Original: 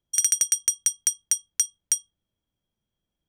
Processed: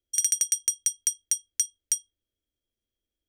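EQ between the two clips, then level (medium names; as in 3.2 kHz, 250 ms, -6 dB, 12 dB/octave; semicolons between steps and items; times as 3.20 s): static phaser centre 390 Hz, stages 4; -2.5 dB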